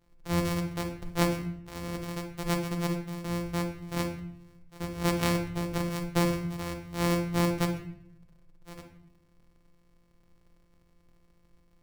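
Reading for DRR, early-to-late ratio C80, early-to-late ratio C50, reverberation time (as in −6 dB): 3.5 dB, 11.0 dB, 7.5 dB, non-exponential decay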